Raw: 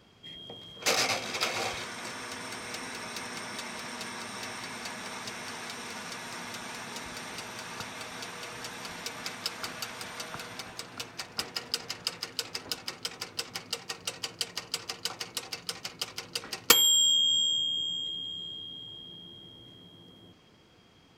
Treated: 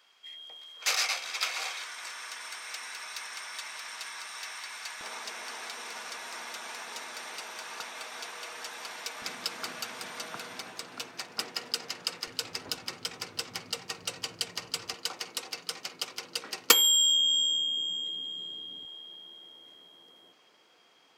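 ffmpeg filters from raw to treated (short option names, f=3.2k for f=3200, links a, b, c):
-af "asetnsamples=n=441:p=0,asendcmd='5.01 highpass f 490;9.22 highpass f 200;12.27 highpass f 62;14.94 highpass f 250;18.85 highpass f 520',highpass=1.1k"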